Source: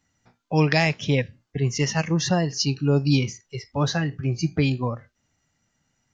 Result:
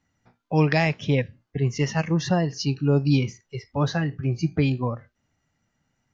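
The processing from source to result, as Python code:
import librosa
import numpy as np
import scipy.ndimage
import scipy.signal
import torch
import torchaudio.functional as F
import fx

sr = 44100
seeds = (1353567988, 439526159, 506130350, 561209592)

y = fx.lowpass(x, sr, hz=2600.0, slope=6)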